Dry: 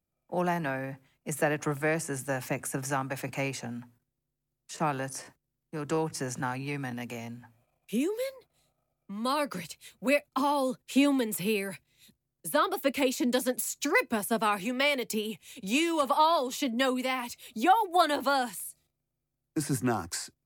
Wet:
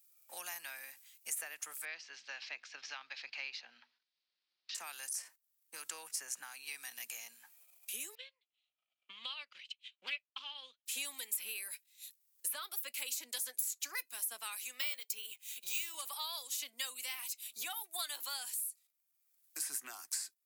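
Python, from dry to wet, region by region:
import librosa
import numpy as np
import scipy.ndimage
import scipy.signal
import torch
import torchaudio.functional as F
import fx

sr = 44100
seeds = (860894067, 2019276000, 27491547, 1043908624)

y = fx.chain(x, sr, fx.steep_lowpass(hz=4700.0, slope=48),
    fx.low_shelf(hz=92.0, db=-10.0), at=(1.85, 4.75))
y = fx.chain(y, sr, fx.transient(attack_db=8, sustain_db=-11),
    fx.ladder_lowpass(hz=3300.0, resonance_pct=70),
    fx.doppler_dist(depth_ms=0.21), at=(8.15, 10.86))
y = fx.chain(y, sr, fx.highpass(hz=330.0, slope=6),
    fx.notch(hz=700.0, q=12.0),
    fx.resample_bad(factor=2, down='filtered', up='hold'), at=(14.81, 15.95))
y = fx.highpass(y, sr, hz=1100.0, slope=6)
y = np.diff(y, prepend=0.0)
y = fx.band_squash(y, sr, depth_pct=70)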